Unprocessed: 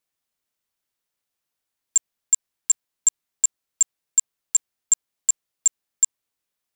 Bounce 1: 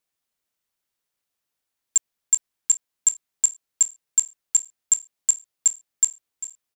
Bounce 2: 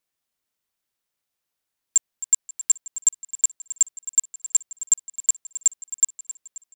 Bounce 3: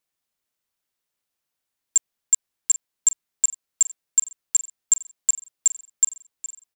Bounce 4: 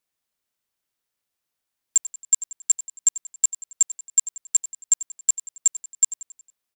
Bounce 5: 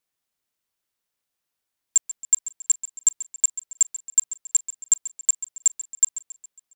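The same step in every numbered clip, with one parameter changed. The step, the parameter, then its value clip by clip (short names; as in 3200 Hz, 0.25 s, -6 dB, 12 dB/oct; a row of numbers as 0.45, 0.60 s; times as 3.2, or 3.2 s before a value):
feedback echo, time: 397, 266, 784, 91, 137 ms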